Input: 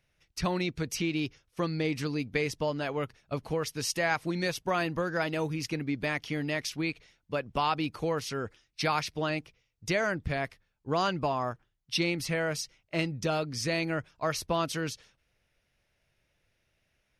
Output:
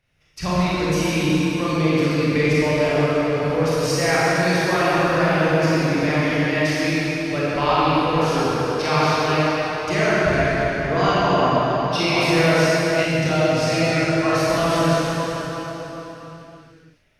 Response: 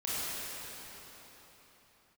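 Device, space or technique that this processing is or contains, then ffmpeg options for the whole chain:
swimming-pool hall: -filter_complex "[1:a]atrim=start_sample=2205[link_01];[0:a][link_01]afir=irnorm=-1:irlink=0,highshelf=frequency=4600:gain=-5.5,asettb=1/sr,asplit=3[link_02][link_03][link_04];[link_02]atrim=end=12.164[link_05];[link_03]atrim=start=12.16:end=13.03,asetpts=PTS-STARTPTS,afade=type=in:duration=0.004:curve=qsin,afade=type=out:start_time=0.866:duration=0.004:curve=qsin,equalizer=frequency=770:width_type=o:width=3:gain=4.5[link_06];[link_04]atrim=start=13.026[link_07];[link_05][link_06]acrossfade=duration=0.004:curve1=hsin:curve2=qsin[link_08];[link_08][link_07]acrossfade=duration=0.004:curve1=qsin:curve2=hsin,volume=5.5dB"

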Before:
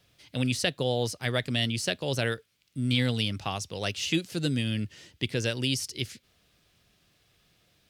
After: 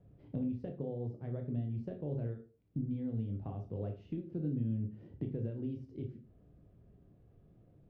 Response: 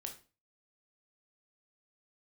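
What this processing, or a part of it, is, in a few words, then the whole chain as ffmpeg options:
television next door: -filter_complex "[0:a]acompressor=threshold=-42dB:ratio=5,lowpass=390[link_01];[1:a]atrim=start_sample=2205[link_02];[link_01][link_02]afir=irnorm=-1:irlink=0,volume=12dB"

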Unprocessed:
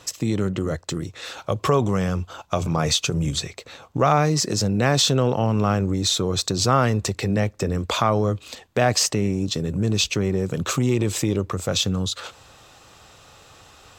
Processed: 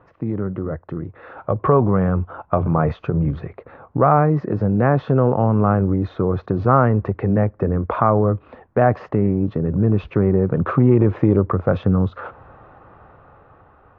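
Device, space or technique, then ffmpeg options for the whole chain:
action camera in a waterproof case: -af "lowpass=frequency=1500:width=0.5412,lowpass=frequency=1500:width=1.3066,dynaudnorm=framelen=310:gausssize=9:maxgain=11.5dB,volume=-1dB" -ar 16000 -c:a aac -b:a 64k

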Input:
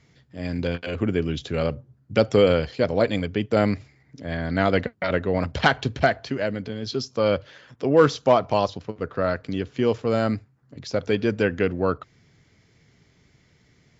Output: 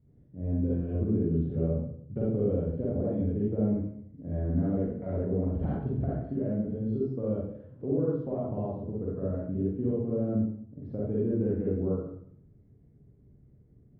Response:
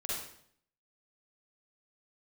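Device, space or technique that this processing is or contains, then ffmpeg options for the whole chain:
television next door: -filter_complex "[0:a]acompressor=threshold=-23dB:ratio=3,lowpass=310[link_01];[1:a]atrim=start_sample=2205[link_02];[link_01][link_02]afir=irnorm=-1:irlink=0"

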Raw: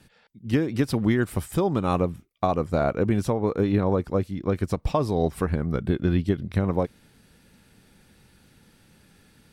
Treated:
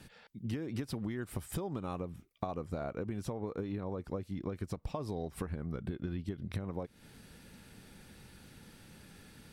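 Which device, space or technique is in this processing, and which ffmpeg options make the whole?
serial compression, leveller first: -af "acompressor=threshold=-24dB:ratio=2.5,acompressor=threshold=-37dB:ratio=5,volume=1.5dB"

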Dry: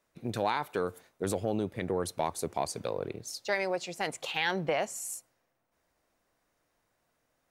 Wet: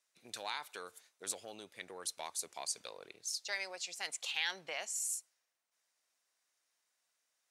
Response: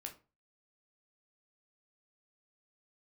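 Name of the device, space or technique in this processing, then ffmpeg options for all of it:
piezo pickup straight into a mixer: -af "lowpass=7500,aderivative,volume=5dB"

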